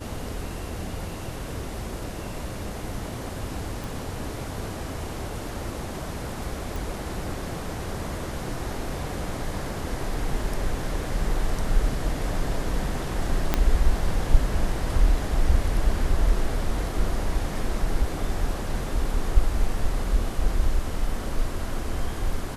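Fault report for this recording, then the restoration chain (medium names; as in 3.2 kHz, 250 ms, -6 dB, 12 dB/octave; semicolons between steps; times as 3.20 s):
3.84 s: pop
6.76 s: pop
13.54 s: pop -6 dBFS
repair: de-click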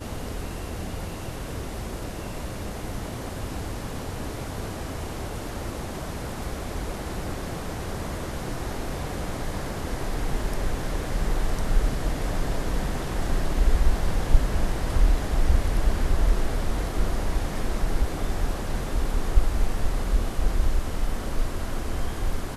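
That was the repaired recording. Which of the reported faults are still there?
13.54 s: pop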